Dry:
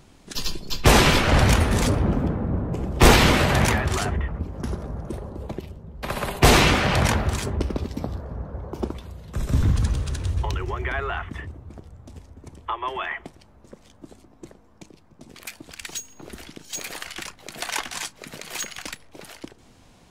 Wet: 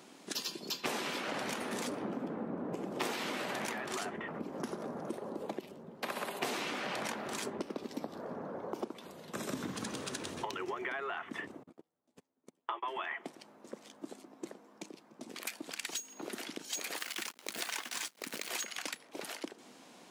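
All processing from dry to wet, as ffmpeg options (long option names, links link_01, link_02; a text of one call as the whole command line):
ffmpeg -i in.wav -filter_complex "[0:a]asettb=1/sr,asplit=3[link_01][link_02][link_03];[link_01]atrim=end=11.634[link_04];[link_02]atrim=start=11.63:end=13.02,asetpts=PTS-STARTPTS,afade=type=in:duration=0.004:curve=qsin,afade=type=out:start_time=1.386:duration=0.004:curve=qsin,equalizer=frequency=5600:width=7:gain=-3.5,asplit=2[link_05][link_06];[link_06]adelay=12,volume=-4dB[link_07];[link_05][link_07]amix=inputs=2:normalize=0,atrim=end_sample=61299,agate=range=-32dB:threshold=-35dB:ratio=16:release=100:detection=peak[link_08];[link_03]atrim=start=13.016[link_09];[link_04][link_08]acrossfade=duration=0.004:curve1=hsin:curve2=qsin[link_10];[link_10][link_09]acrossfade=duration=0.004:curve1=qsin:curve2=hsin,asettb=1/sr,asplit=3[link_11][link_12][link_13];[link_11]atrim=end=16.974[link_14];[link_12]atrim=start=16.97:end=18.49,asetpts=PTS-STARTPTS,afade=type=in:duration=0.004:curve=qsin,afade=type=out:start_time=1.516:duration=0.004:curve=qsin,equalizer=frequency=710:width_type=o:width=1.1:gain=-4.5,acrusher=bits=7:dc=4:mix=0:aa=0.000001[link_15];[link_13]atrim=start=18.486[link_16];[link_14][link_15]acrossfade=duration=0.004:curve1=hsin:curve2=qsin[link_17];[link_17][link_16]acrossfade=duration=0.004:curve1=qsin:curve2=hsin,highpass=frequency=220:width=0.5412,highpass=frequency=220:width=1.3066,acompressor=threshold=-35dB:ratio=8" out.wav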